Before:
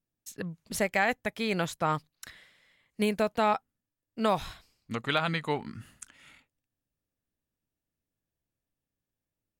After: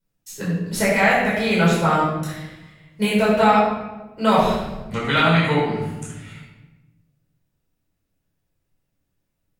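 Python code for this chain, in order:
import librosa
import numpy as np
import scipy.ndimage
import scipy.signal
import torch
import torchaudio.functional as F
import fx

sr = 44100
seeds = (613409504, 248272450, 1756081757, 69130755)

y = fx.room_shoebox(x, sr, seeds[0], volume_m3=570.0, walls='mixed', distance_m=4.8)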